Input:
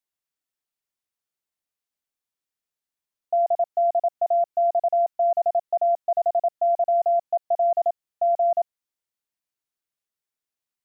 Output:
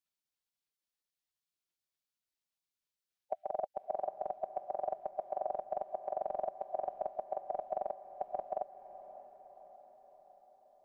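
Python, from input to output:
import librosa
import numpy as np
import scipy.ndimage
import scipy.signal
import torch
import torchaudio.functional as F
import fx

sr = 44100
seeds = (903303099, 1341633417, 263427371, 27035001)

p1 = fx.bass_treble(x, sr, bass_db=-2, treble_db=-14)
p2 = fx.spec_gate(p1, sr, threshold_db=-10, keep='weak')
p3 = fx.dynamic_eq(p2, sr, hz=800.0, q=0.92, threshold_db=-48.0, ratio=4.0, max_db=-5)
p4 = p3 + fx.echo_diffused(p3, sr, ms=605, feedback_pct=59, wet_db=-13.0, dry=0)
y = F.gain(torch.from_numpy(p4), 8.5).numpy()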